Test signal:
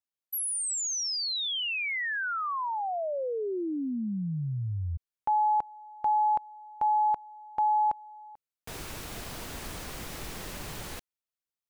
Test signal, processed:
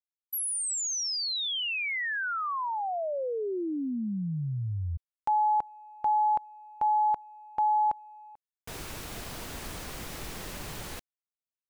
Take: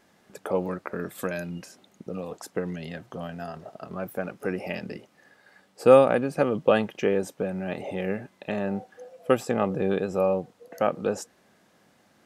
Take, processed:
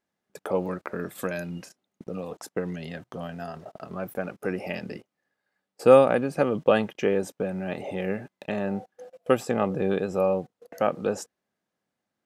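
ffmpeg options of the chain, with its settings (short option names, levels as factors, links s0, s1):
-af "agate=range=0.0794:threshold=0.00398:ratio=16:release=40:detection=rms"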